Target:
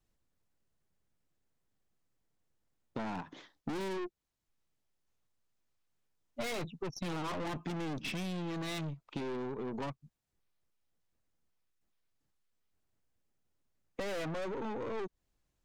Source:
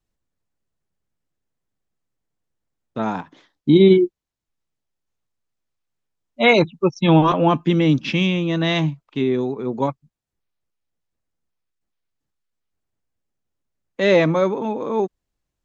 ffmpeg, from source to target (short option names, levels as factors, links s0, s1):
-af "aeval=exprs='(tanh(25.1*val(0)+0.4)-tanh(0.4))/25.1':c=same,acompressor=threshold=0.0141:ratio=6,volume=1.12"